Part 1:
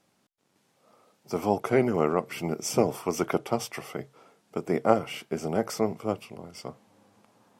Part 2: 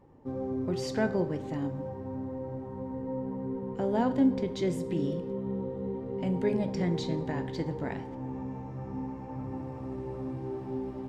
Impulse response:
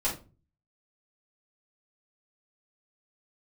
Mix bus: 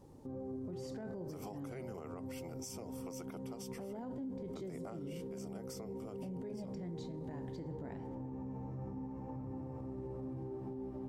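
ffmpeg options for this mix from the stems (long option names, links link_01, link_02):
-filter_complex "[0:a]bass=frequency=250:gain=-6,treble=frequency=4000:gain=9,acrossover=split=160[link_01][link_02];[link_02]acompressor=threshold=-30dB:ratio=3[link_03];[link_01][link_03]amix=inputs=2:normalize=0,volume=-10.5dB,asplit=2[link_04][link_05];[1:a]equalizer=frequency=2900:width_type=o:width=2.8:gain=-10,volume=1dB[link_06];[link_05]apad=whole_len=488987[link_07];[link_06][link_07]sidechaincompress=threshold=-44dB:ratio=8:attack=16:release=222[link_08];[link_04][link_08]amix=inputs=2:normalize=0,alimiter=level_in=12.5dB:limit=-24dB:level=0:latency=1:release=125,volume=-12.5dB"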